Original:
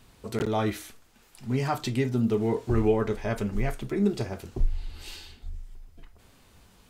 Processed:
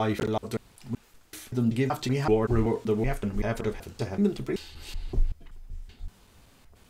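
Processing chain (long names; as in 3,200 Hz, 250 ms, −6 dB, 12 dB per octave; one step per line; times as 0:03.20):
slices reordered back to front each 190 ms, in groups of 4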